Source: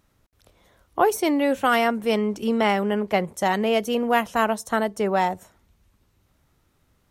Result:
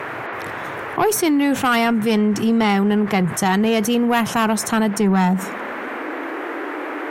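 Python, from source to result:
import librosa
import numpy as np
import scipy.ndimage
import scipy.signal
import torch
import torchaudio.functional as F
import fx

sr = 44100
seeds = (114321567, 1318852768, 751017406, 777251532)

y = fx.peak_eq(x, sr, hz=580.0, db=-13.0, octaves=0.31)
y = fx.dmg_noise_band(y, sr, seeds[0], low_hz=290.0, high_hz=2000.0, level_db=-47.0)
y = fx.filter_sweep_highpass(y, sr, from_hz=130.0, to_hz=310.0, start_s=4.52, end_s=6.38, q=4.9)
y = fx.cheby_harmonics(y, sr, harmonics=(5,), levels_db=(-18,), full_scale_db=-6.5)
y = fx.env_flatten(y, sr, amount_pct=50)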